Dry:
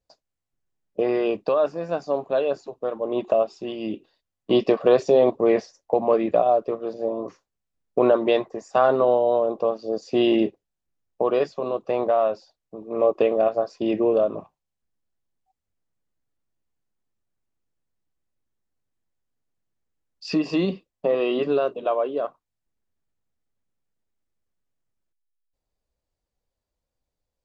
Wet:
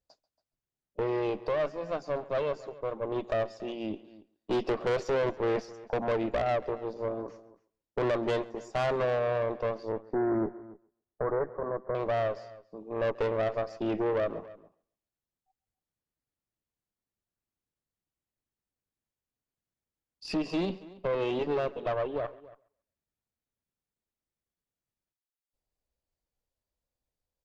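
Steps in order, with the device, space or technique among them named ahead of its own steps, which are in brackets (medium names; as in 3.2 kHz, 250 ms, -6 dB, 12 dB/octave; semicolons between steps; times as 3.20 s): rockabilly slapback (valve stage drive 21 dB, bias 0.6; tape echo 136 ms, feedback 22%, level -20 dB, low-pass 5 kHz); 9.92–11.95 s: steep low-pass 1.9 kHz 72 dB/octave; echo from a far wall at 48 m, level -19 dB; trim -3 dB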